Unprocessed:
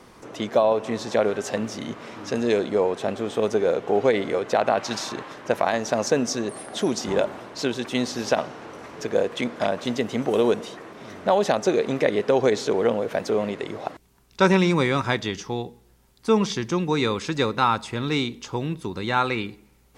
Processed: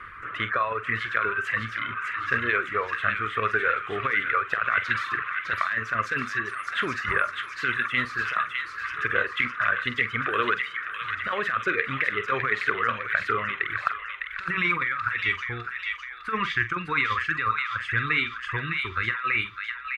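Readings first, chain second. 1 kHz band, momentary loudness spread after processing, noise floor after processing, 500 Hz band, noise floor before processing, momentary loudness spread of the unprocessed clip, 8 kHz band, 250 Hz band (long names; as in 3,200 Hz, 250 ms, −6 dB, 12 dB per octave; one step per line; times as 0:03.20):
0.0 dB, 6 LU, −39 dBFS, −13.5 dB, −56 dBFS, 12 LU, below −15 dB, −13.5 dB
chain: reverb reduction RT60 1.8 s
drawn EQ curve 100 Hz 0 dB, 200 Hz −17 dB, 420 Hz −14 dB, 850 Hz −22 dB, 1,200 Hz +12 dB, 1,800 Hz +11 dB, 2,800 Hz 0 dB, 5,700 Hz −27 dB, 10,000 Hz −20 dB
compressor whose output falls as the input rises −27 dBFS, ratio −1
double-tracking delay 45 ms −12 dB
on a send: delay with a high-pass on its return 606 ms, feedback 53%, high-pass 1,700 Hz, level −3.5 dB
on the sum: level +1.5 dB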